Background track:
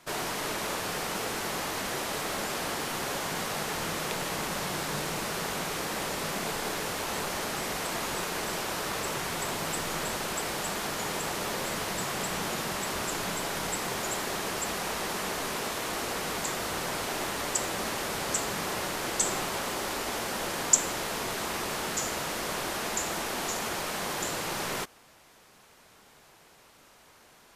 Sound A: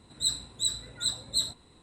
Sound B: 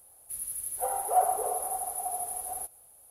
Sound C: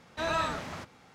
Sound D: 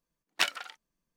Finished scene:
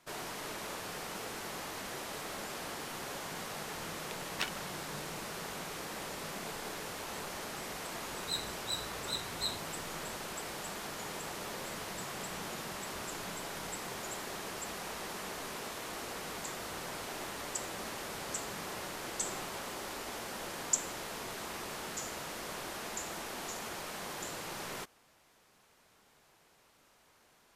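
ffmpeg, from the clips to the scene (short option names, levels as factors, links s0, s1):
-filter_complex "[0:a]volume=0.355[s0];[1:a]equalizer=f=7600:t=o:w=1.1:g=-9[s1];[4:a]atrim=end=1.16,asetpts=PTS-STARTPTS,volume=0.335,afade=t=in:d=0.004:c=hsin,afade=t=out:st=1.156:d=0.004:c=hsin,adelay=4000[s2];[s1]atrim=end=1.82,asetpts=PTS-STARTPTS,volume=0.531,afade=t=in:d=0.004:c=hsin,afade=t=out:st=1.816:d=0.004:c=hsin,adelay=8070[s3];[s0][s2][s3]amix=inputs=3:normalize=0"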